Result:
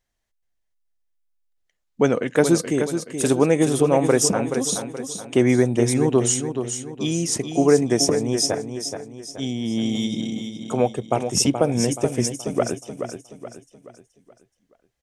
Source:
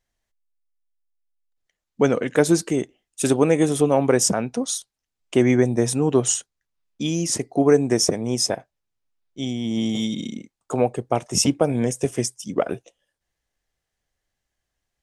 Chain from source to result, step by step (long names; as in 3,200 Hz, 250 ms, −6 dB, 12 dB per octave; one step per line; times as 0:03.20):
repeating echo 426 ms, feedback 42%, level −8 dB